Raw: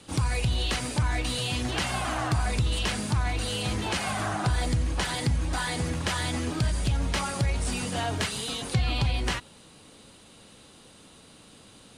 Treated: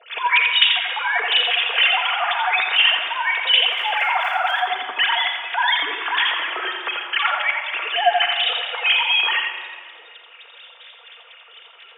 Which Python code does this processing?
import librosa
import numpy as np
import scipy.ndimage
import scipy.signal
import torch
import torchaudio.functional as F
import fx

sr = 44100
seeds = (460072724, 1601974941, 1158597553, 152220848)

p1 = fx.sine_speech(x, sr)
p2 = scipy.signal.sosfilt(scipy.signal.butter(2, 990.0, 'highpass', fs=sr, output='sos'), p1)
p3 = fx.high_shelf(p2, sr, hz=2300.0, db=8.5)
p4 = fx.dmg_crackle(p3, sr, seeds[0], per_s=150.0, level_db=-42.0, at=(3.71, 4.62), fade=0.02)
p5 = fx.harmonic_tremolo(p4, sr, hz=4.1, depth_pct=100, crossover_hz=1400.0)
p6 = p5 + fx.echo_single(p5, sr, ms=86, db=-5.0, dry=0)
p7 = fx.room_shoebox(p6, sr, seeds[1], volume_m3=3800.0, walls='mixed', distance_m=1.7)
y = p7 * 10.0 ** (7.5 / 20.0)